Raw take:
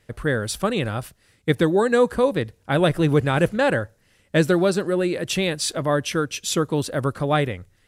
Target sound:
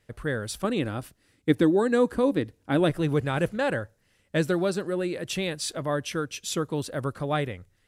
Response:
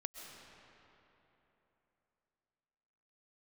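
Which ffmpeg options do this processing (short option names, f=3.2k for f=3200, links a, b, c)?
-filter_complex "[0:a]asettb=1/sr,asplit=3[a][b][c];[a]atrim=end=0.644[d];[b]atrim=start=0.64:end=2.9,asetpts=PTS-STARTPTS,afade=t=in:d=0.004:c=qsin,afade=t=out:st=2.256:d=0.004:c=qsin,equalizer=f=290:w=2.6:g=10.5[e];[c]atrim=start=2.896[f];[d][e]acrossfade=d=0.004:c1=hsin:c2=qsin[g];[g][f]acrossfade=d=0.004:c1=qsin:c2=hsin,volume=-6.5dB"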